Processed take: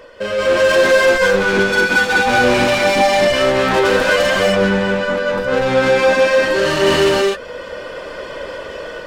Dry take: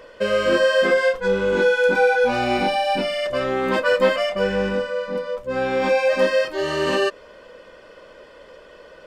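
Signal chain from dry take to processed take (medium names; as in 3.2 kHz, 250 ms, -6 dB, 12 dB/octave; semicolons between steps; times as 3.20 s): reverb removal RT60 0.55 s; 4.43–6.51 s: compression 3:1, threshold -24 dBFS, peak gain reduction 8 dB; peak limiter -13.5 dBFS, peak gain reduction 6.5 dB; level rider gain up to 12 dB; saturation -18.5 dBFS, distortion -7 dB; gated-style reverb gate 280 ms rising, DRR -1.5 dB; trim +3 dB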